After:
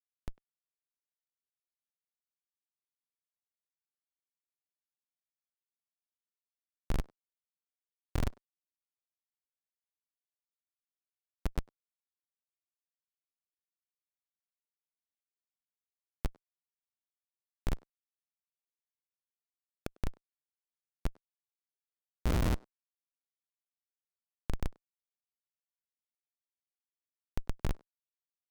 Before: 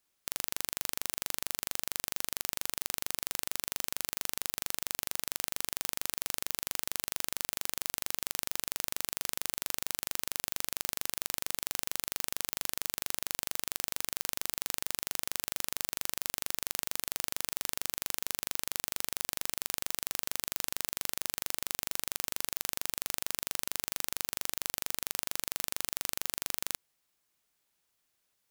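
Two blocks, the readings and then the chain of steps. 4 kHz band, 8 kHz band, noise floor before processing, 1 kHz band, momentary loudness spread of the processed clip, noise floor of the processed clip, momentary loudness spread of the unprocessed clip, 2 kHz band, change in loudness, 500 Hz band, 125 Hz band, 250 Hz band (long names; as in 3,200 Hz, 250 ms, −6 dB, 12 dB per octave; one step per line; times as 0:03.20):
−20.5 dB, −26.0 dB, −78 dBFS, −9.0 dB, 14 LU, below −85 dBFS, 0 LU, −14.5 dB, −6.0 dB, −2.5 dB, +11.0 dB, +4.0 dB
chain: wind on the microphone 320 Hz −36 dBFS
low-shelf EQ 80 Hz +8.5 dB
comparator with hysteresis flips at −19 dBFS
far-end echo of a speakerphone 100 ms, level −22 dB
level +4 dB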